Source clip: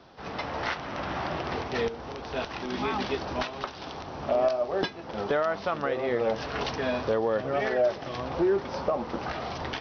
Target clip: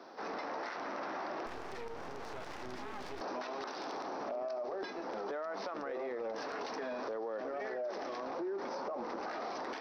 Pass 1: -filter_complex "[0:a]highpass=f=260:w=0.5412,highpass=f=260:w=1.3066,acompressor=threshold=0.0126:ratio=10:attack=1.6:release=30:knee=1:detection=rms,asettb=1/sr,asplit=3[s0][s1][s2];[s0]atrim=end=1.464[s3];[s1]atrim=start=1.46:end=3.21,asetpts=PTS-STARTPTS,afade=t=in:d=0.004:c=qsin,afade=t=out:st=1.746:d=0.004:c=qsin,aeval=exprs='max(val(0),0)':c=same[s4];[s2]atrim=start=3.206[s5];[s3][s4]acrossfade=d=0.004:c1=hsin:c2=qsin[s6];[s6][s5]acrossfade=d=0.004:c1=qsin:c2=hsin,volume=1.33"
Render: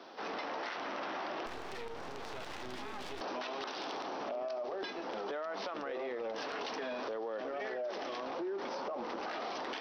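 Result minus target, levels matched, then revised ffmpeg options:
4 kHz band +5.0 dB
-filter_complex "[0:a]highpass=f=260:w=0.5412,highpass=f=260:w=1.3066,acompressor=threshold=0.0126:ratio=10:attack=1.6:release=30:knee=1:detection=rms,equalizer=f=3100:t=o:w=0.7:g=-10.5,asettb=1/sr,asplit=3[s0][s1][s2];[s0]atrim=end=1.464[s3];[s1]atrim=start=1.46:end=3.21,asetpts=PTS-STARTPTS,afade=t=in:d=0.004:c=qsin,afade=t=out:st=1.746:d=0.004:c=qsin,aeval=exprs='max(val(0),0)':c=same[s4];[s2]atrim=start=3.206[s5];[s3][s4]acrossfade=d=0.004:c1=hsin:c2=qsin[s6];[s6][s5]acrossfade=d=0.004:c1=qsin:c2=hsin,volume=1.33"

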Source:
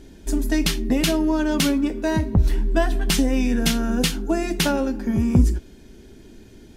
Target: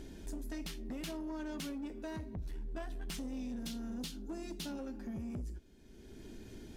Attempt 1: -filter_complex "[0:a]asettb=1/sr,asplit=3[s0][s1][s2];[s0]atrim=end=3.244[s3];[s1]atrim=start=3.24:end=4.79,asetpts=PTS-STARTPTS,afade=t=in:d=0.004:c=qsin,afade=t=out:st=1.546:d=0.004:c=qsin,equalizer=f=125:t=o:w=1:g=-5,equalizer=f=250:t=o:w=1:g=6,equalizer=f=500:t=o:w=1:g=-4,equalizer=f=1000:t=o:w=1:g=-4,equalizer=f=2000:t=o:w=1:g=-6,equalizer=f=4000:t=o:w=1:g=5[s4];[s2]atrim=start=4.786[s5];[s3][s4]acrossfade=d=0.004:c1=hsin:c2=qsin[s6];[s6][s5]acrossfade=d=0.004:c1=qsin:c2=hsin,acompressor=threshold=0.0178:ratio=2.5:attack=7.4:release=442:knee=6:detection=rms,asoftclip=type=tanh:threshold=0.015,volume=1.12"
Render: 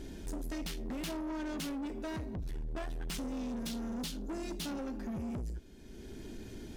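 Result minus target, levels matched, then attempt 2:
compression: peak gain reduction -7 dB
-filter_complex "[0:a]asettb=1/sr,asplit=3[s0][s1][s2];[s0]atrim=end=3.244[s3];[s1]atrim=start=3.24:end=4.79,asetpts=PTS-STARTPTS,afade=t=in:d=0.004:c=qsin,afade=t=out:st=1.546:d=0.004:c=qsin,equalizer=f=125:t=o:w=1:g=-5,equalizer=f=250:t=o:w=1:g=6,equalizer=f=500:t=o:w=1:g=-4,equalizer=f=1000:t=o:w=1:g=-4,equalizer=f=2000:t=o:w=1:g=-6,equalizer=f=4000:t=o:w=1:g=5[s4];[s2]atrim=start=4.786[s5];[s3][s4]acrossfade=d=0.004:c1=hsin:c2=qsin[s6];[s6][s5]acrossfade=d=0.004:c1=qsin:c2=hsin,acompressor=threshold=0.00447:ratio=2.5:attack=7.4:release=442:knee=6:detection=rms,asoftclip=type=tanh:threshold=0.015,volume=1.12"

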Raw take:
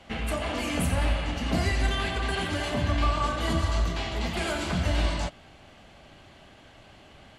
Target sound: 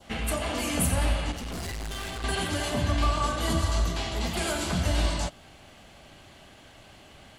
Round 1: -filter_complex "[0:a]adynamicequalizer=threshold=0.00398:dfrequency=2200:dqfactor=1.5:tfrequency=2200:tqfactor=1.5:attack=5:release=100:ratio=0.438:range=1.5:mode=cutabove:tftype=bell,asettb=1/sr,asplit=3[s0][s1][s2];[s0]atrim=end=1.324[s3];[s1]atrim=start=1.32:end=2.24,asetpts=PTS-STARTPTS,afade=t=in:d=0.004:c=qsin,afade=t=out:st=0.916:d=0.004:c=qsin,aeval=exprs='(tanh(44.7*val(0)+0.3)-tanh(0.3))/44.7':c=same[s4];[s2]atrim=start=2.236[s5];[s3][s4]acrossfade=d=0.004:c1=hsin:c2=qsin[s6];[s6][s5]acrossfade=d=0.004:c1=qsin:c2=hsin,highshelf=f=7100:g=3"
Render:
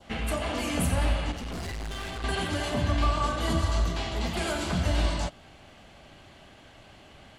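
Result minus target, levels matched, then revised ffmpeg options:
8 kHz band -5.0 dB
-filter_complex "[0:a]adynamicequalizer=threshold=0.00398:dfrequency=2200:dqfactor=1.5:tfrequency=2200:tqfactor=1.5:attack=5:release=100:ratio=0.438:range=1.5:mode=cutabove:tftype=bell,asettb=1/sr,asplit=3[s0][s1][s2];[s0]atrim=end=1.324[s3];[s1]atrim=start=1.32:end=2.24,asetpts=PTS-STARTPTS,afade=t=in:d=0.004:c=qsin,afade=t=out:st=0.916:d=0.004:c=qsin,aeval=exprs='(tanh(44.7*val(0)+0.3)-tanh(0.3))/44.7':c=same[s4];[s2]atrim=start=2.236[s5];[s3][s4]acrossfade=d=0.004:c1=hsin:c2=qsin[s6];[s6][s5]acrossfade=d=0.004:c1=qsin:c2=hsin,highshelf=f=7100:g=12.5"

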